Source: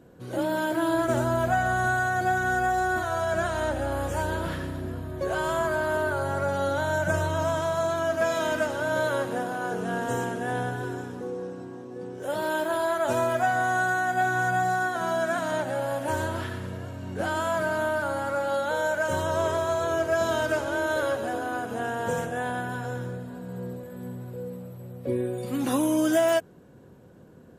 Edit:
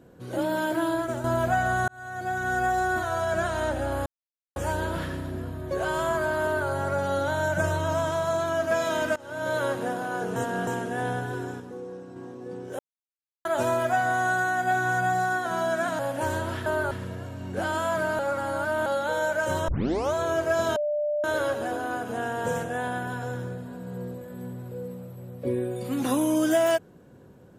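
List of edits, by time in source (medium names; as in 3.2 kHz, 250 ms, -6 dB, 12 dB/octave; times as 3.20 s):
0.78–1.24 s: fade out, to -9 dB
1.88–2.64 s: fade in
4.06 s: insert silence 0.50 s
5.93–6.18 s: copy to 16.53 s
8.66–9.11 s: fade in, from -22.5 dB
9.86–10.17 s: reverse
11.10–11.66 s: gain -4.5 dB
12.29–12.95 s: mute
15.49–15.86 s: delete
17.81–18.48 s: reverse
19.30 s: tape start 0.46 s
20.38–20.86 s: bleep 594 Hz -23.5 dBFS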